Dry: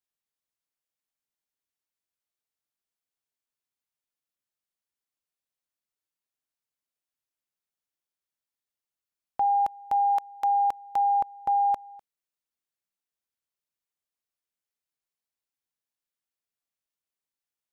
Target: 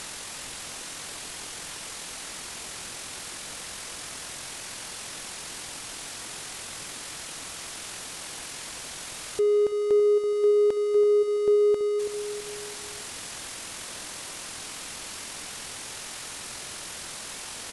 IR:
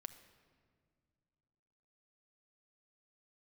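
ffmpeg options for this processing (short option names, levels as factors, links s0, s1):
-filter_complex "[0:a]aeval=exprs='val(0)+0.5*0.02*sgn(val(0))':c=same,asetrate=22696,aresample=44100,atempo=1.94306,asplit=2[s0][s1];[s1]adelay=330,lowpass=f=2000:p=1,volume=0.316,asplit=2[s2][s3];[s3]adelay=330,lowpass=f=2000:p=1,volume=0.37,asplit=2[s4][s5];[s5]adelay=330,lowpass=f=2000:p=1,volume=0.37,asplit=2[s6][s7];[s7]adelay=330,lowpass=f=2000:p=1,volume=0.37[s8];[s2][s4][s6][s8]amix=inputs=4:normalize=0[s9];[s0][s9]amix=inputs=2:normalize=0,acontrast=46,asplit=2[s10][s11];[s11]adelay=150,highpass=300,lowpass=3400,asoftclip=type=hard:threshold=0.0794,volume=0.126[s12];[s10][s12]amix=inputs=2:normalize=0,asplit=2[s13][s14];[s14]acompressor=threshold=0.0224:ratio=6,volume=1[s15];[s13][s15]amix=inputs=2:normalize=0,volume=0.473"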